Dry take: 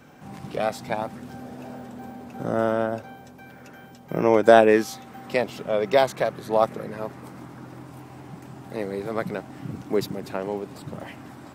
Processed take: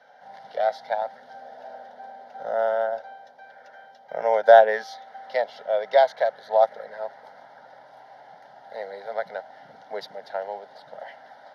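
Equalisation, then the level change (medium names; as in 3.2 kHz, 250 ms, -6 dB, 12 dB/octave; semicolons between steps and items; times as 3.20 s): resonant high-pass 620 Hz, resonance Q 1.5; distance through air 80 m; static phaser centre 1.7 kHz, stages 8; 0.0 dB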